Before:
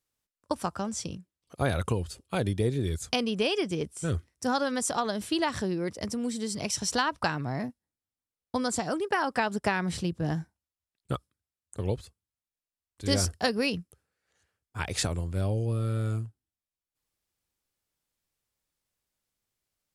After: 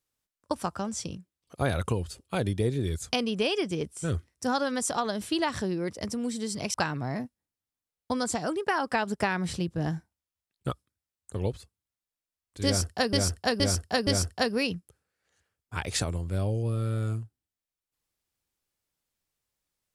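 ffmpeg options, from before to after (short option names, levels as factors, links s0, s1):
-filter_complex "[0:a]asplit=5[s0][s1][s2][s3][s4];[s0]atrim=end=6.742[s5];[s1]atrim=start=7.178:end=13.572[s6];[s2]atrim=start=13.098:end=13.572[s7];[s3]atrim=start=13.098:end=13.572[s8];[s4]atrim=start=13.098[s9];[s5][s6]acrossfade=d=0.004:c1=hsin:c2=hsin[s10];[s10][s7]acrossfade=d=0.004:c1=hsin:c2=hsin[s11];[s11][s8]acrossfade=d=0.004:c1=hsin:c2=hsin[s12];[s12][s9]acrossfade=d=0.004:c1=hsin:c2=hsin"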